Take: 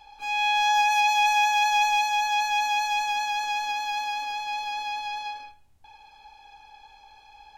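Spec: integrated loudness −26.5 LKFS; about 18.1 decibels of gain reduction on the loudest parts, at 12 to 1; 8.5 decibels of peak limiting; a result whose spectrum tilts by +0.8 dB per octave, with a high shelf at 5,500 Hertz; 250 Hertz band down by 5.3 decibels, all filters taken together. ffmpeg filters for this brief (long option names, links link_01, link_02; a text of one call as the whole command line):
ffmpeg -i in.wav -af "equalizer=frequency=250:width_type=o:gain=-6.5,highshelf=frequency=5500:gain=-9,acompressor=threshold=-38dB:ratio=12,volume=19.5dB,alimiter=limit=-20.5dB:level=0:latency=1" out.wav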